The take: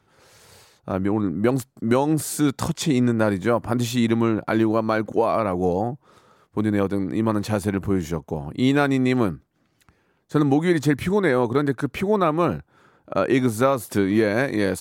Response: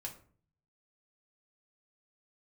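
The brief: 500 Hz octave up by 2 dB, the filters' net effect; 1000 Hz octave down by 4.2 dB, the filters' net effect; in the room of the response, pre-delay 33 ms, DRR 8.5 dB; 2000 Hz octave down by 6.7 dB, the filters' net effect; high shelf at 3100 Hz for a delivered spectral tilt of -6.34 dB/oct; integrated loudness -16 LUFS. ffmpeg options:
-filter_complex "[0:a]equalizer=f=500:t=o:g=4,equalizer=f=1k:t=o:g=-5.5,equalizer=f=2k:t=o:g=-8.5,highshelf=f=3.1k:g=4.5,asplit=2[a][b];[1:a]atrim=start_sample=2205,adelay=33[c];[b][c]afir=irnorm=-1:irlink=0,volume=-6dB[d];[a][d]amix=inputs=2:normalize=0,volume=4.5dB"

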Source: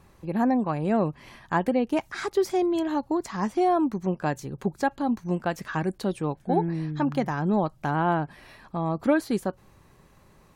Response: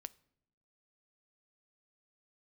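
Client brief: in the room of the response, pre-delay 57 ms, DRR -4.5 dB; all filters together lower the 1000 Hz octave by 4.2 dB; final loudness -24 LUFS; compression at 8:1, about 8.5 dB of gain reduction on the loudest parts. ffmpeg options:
-filter_complex "[0:a]equalizer=f=1k:t=o:g=-6,acompressor=threshold=-27dB:ratio=8,asplit=2[a][b];[1:a]atrim=start_sample=2205,adelay=57[c];[b][c]afir=irnorm=-1:irlink=0,volume=9.5dB[d];[a][d]amix=inputs=2:normalize=0,volume=3dB"

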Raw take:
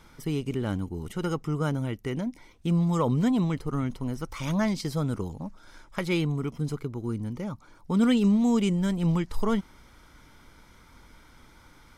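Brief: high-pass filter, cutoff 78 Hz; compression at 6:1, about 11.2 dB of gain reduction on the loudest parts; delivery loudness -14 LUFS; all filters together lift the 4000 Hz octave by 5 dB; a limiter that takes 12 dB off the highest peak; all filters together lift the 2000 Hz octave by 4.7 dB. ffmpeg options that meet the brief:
-af "highpass=78,equalizer=f=2k:t=o:g=4.5,equalizer=f=4k:t=o:g=5,acompressor=threshold=-31dB:ratio=6,volume=24.5dB,alimiter=limit=-5dB:level=0:latency=1"

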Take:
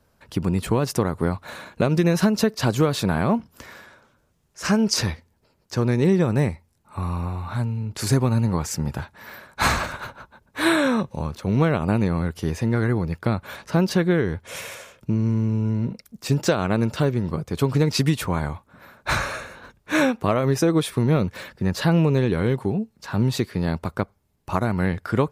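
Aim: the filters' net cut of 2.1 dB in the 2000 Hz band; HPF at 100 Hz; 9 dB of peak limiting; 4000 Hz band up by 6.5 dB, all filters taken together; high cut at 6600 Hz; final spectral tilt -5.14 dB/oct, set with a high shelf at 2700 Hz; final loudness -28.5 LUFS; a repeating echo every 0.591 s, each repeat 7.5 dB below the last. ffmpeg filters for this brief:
-af "highpass=100,lowpass=6.6k,equalizer=f=2k:t=o:g=-6.5,highshelf=f=2.7k:g=6.5,equalizer=f=4k:t=o:g=4.5,alimiter=limit=-11dB:level=0:latency=1,aecho=1:1:591|1182|1773|2364|2955:0.422|0.177|0.0744|0.0312|0.0131,volume=-4.5dB"

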